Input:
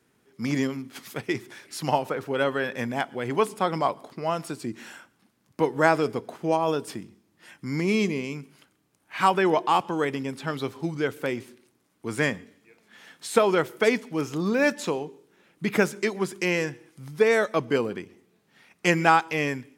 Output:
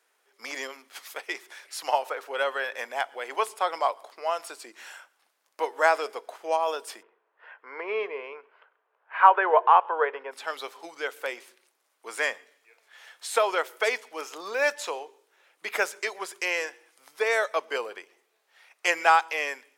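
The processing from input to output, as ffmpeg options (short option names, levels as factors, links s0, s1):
-filter_complex "[0:a]asplit=3[s0][s1][s2];[s0]afade=t=out:st=7.01:d=0.02[s3];[s1]highpass=280,equalizer=f=300:t=q:w=4:g=-5,equalizer=f=450:t=q:w=4:g=10,equalizer=f=650:t=q:w=4:g=3,equalizer=f=1000:t=q:w=4:g=7,equalizer=f=1500:t=q:w=4:g=6,equalizer=f=2200:t=q:w=4:g=-4,lowpass=f=2500:w=0.5412,lowpass=f=2500:w=1.3066,afade=t=in:st=7.01:d=0.02,afade=t=out:st=10.31:d=0.02[s4];[s2]afade=t=in:st=10.31:d=0.02[s5];[s3][s4][s5]amix=inputs=3:normalize=0,highpass=f=540:w=0.5412,highpass=f=540:w=1.3066"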